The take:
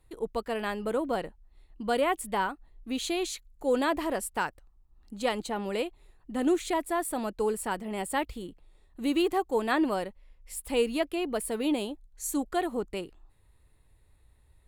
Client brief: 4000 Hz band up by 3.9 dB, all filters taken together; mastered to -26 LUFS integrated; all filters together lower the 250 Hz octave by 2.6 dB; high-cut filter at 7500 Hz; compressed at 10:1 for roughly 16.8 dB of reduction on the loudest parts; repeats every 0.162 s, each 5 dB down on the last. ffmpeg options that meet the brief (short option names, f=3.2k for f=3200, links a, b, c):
-af "lowpass=7.5k,equalizer=f=250:t=o:g=-3.5,equalizer=f=4k:t=o:g=5.5,acompressor=threshold=-40dB:ratio=10,aecho=1:1:162|324|486|648|810|972|1134:0.562|0.315|0.176|0.0988|0.0553|0.031|0.0173,volume=17.5dB"